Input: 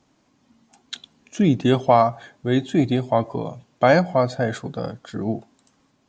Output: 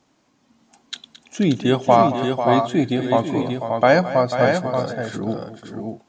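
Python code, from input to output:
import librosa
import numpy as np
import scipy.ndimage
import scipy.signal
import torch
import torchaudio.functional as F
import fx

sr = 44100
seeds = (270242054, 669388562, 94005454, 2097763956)

y = fx.low_shelf(x, sr, hz=170.0, db=-6.5)
y = fx.echo_multitap(y, sr, ms=(219, 492, 580), db=(-14.5, -10.0, -5.0))
y = y * 10.0 ** (1.5 / 20.0)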